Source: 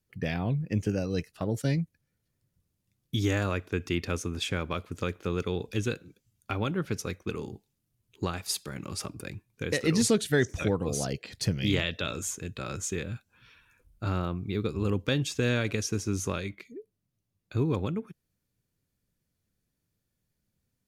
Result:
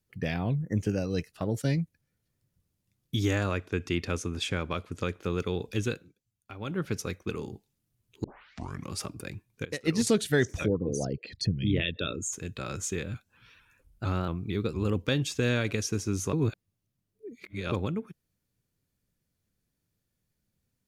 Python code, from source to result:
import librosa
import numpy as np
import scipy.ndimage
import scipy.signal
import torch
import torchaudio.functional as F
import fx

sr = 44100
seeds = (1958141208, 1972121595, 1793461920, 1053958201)

y = fx.spec_erase(x, sr, start_s=0.55, length_s=0.22, low_hz=2100.0, high_hz=5600.0)
y = fx.lowpass(y, sr, hz=11000.0, slope=12, at=(3.36, 5.21))
y = fx.upward_expand(y, sr, threshold_db=-32.0, expansion=2.5, at=(9.65, 10.07))
y = fx.envelope_sharpen(y, sr, power=2.0, at=(10.66, 12.33))
y = fx.vibrato_shape(y, sr, shape='saw_up', rate_hz=4.4, depth_cents=100.0, at=(13.14, 15.03))
y = fx.edit(y, sr, fx.fade_down_up(start_s=5.84, length_s=1.04, db=-12.0, fade_s=0.29, curve='qsin'),
    fx.tape_start(start_s=8.24, length_s=0.66),
    fx.reverse_span(start_s=16.33, length_s=1.39), tone=tone)